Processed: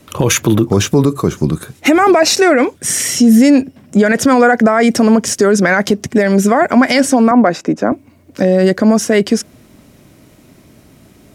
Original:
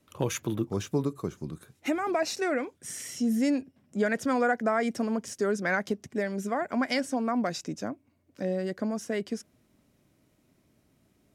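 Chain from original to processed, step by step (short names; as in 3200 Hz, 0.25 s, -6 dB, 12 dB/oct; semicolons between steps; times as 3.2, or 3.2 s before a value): 7.31–7.92 three-band isolator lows -13 dB, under 210 Hz, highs -16 dB, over 2100 Hz; maximiser +23.5 dB; gain -1 dB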